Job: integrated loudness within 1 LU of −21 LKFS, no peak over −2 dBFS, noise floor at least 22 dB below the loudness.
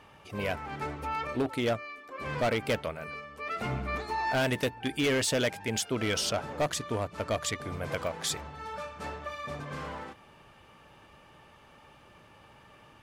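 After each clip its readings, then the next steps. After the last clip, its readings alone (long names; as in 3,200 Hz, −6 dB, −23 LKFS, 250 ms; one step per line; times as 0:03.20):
share of clipped samples 1.5%; peaks flattened at −23.0 dBFS; number of dropouts 1; longest dropout 1.1 ms; integrated loudness −32.0 LKFS; sample peak −23.0 dBFS; target loudness −21.0 LKFS
→ clipped peaks rebuilt −23 dBFS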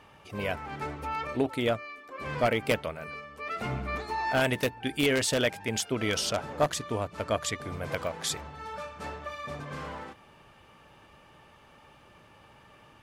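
share of clipped samples 0.0%; number of dropouts 1; longest dropout 1.1 ms
→ repair the gap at 0:08.07, 1.1 ms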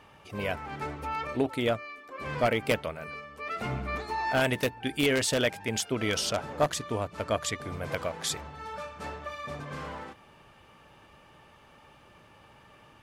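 number of dropouts 0; integrated loudness −31.0 LKFS; sample peak −14.0 dBFS; target loudness −21.0 LKFS
→ level +10 dB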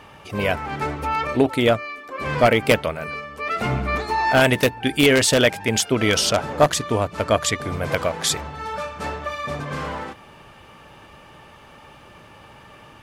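integrated loudness −21.0 LKFS; sample peak −4.0 dBFS; background noise floor −46 dBFS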